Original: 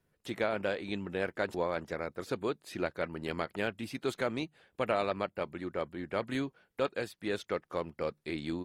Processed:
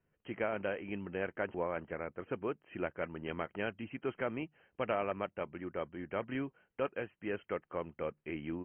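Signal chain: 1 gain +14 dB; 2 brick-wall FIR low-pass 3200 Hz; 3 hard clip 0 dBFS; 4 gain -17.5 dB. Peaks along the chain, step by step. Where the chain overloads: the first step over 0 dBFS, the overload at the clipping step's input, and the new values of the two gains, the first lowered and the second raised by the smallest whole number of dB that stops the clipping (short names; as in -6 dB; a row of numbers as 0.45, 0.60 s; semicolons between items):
-3.0, -3.0, -3.0, -20.5 dBFS; no overload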